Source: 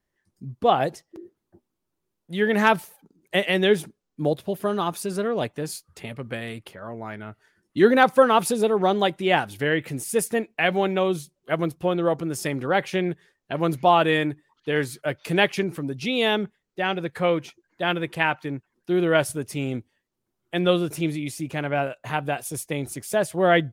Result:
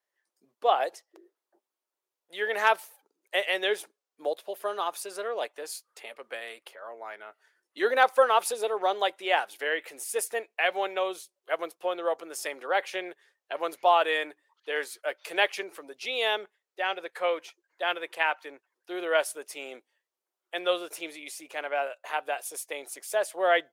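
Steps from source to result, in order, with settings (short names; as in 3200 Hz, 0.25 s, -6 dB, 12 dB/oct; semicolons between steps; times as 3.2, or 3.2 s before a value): HPF 480 Hz 24 dB/oct; gain -3.5 dB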